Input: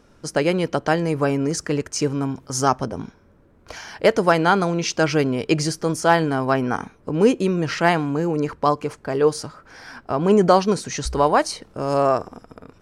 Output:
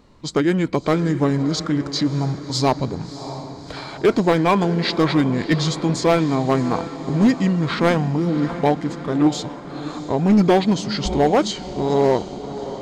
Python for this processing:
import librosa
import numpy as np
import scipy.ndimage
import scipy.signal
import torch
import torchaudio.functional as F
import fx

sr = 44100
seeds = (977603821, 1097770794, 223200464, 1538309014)

y = fx.formant_shift(x, sr, semitones=-5)
y = fx.echo_diffused(y, sr, ms=650, feedback_pct=58, wet_db=-13.5)
y = np.clip(10.0 ** (11.5 / 20.0) * y, -1.0, 1.0) / 10.0 ** (11.5 / 20.0)
y = y * librosa.db_to_amplitude(2.0)